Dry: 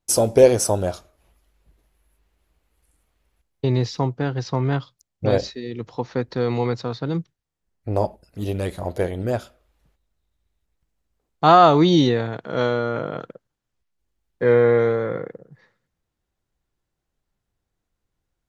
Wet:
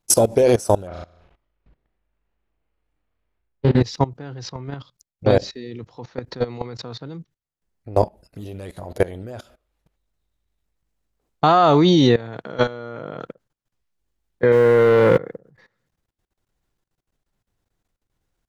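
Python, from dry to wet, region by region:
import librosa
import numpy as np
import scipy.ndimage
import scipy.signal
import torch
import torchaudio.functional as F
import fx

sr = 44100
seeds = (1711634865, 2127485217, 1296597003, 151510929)

y = fx.chain(x, sr, fx.self_delay(depth_ms=0.25),
    fx.lowpass(hz=2700.0, slope=12),
    fx.room_flutter(wall_m=6.2, rt60_s=0.53), at=(0.87, 3.81))
y = fx.chain(y, sr, fx.over_compress(threshold_db=-21.0, ratio=-1.0),
    fx.leveller(passes=2), at=(14.52, 15.18))
y = fx.peak_eq(y, sr, hz=64.0, db=-8.0, octaves=0.25)
y = fx.level_steps(y, sr, step_db=20)
y = y * 10.0 ** (6.5 / 20.0)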